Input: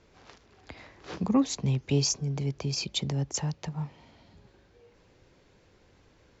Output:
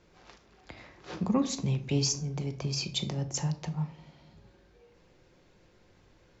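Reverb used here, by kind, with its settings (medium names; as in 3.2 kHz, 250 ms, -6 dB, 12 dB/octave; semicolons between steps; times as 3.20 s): simulated room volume 550 m³, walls furnished, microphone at 0.91 m; trim -2 dB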